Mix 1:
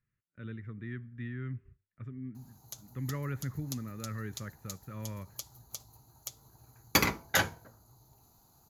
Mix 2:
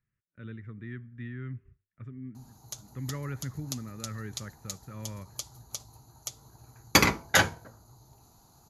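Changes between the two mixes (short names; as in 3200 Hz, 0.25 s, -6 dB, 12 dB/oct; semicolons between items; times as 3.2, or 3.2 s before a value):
background +5.5 dB; master: add LPF 11000 Hz 24 dB/oct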